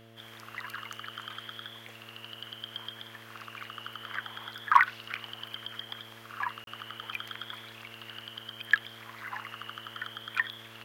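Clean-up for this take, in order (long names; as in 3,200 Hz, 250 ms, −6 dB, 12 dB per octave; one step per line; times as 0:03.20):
clipped peaks rebuilt −7 dBFS
hum removal 113.7 Hz, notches 6
repair the gap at 0:06.64, 32 ms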